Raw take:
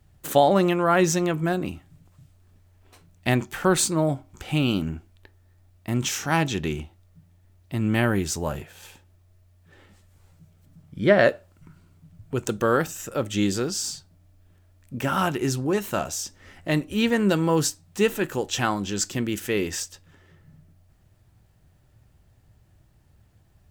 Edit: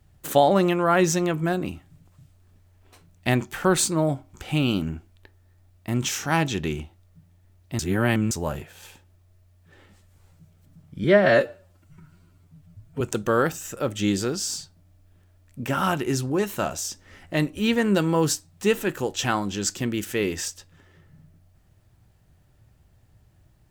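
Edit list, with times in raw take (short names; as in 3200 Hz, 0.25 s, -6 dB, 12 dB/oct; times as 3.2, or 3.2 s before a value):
7.79–8.31 reverse
11.04–12.35 stretch 1.5×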